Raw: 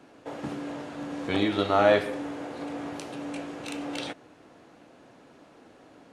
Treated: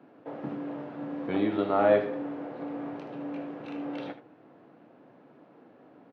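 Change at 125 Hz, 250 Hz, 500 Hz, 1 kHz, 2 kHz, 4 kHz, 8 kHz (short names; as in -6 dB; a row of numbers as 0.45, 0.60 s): -3.5 dB, -0.5 dB, -1.0 dB, -3.0 dB, -7.0 dB, -13.5 dB, under -25 dB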